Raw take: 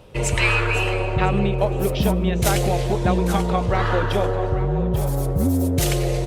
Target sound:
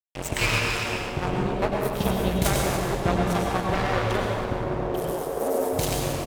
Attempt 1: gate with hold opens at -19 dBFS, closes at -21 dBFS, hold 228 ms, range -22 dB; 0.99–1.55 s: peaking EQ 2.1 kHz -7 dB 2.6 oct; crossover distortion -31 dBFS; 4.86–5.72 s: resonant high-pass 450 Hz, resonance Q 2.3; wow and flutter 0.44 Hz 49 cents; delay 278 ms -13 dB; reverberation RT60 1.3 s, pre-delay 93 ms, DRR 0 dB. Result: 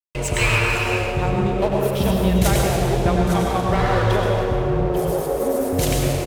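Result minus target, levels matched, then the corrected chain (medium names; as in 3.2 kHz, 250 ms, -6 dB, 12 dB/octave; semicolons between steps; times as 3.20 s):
crossover distortion: distortion -13 dB
gate with hold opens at -19 dBFS, closes at -21 dBFS, hold 228 ms, range -22 dB; 0.99–1.55 s: peaking EQ 2.1 kHz -7 dB 2.6 oct; crossover distortion -19.5 dBFS; 4.86–5.72 s: resonant high-pass 450 Hz, resonance Q 2.3; wow and flutter 0.44 Hz 49 cents; delay 278 ms -13 dB; reverberation RT60 1.3 s, pre-delay 93 ms, DRR 0 dB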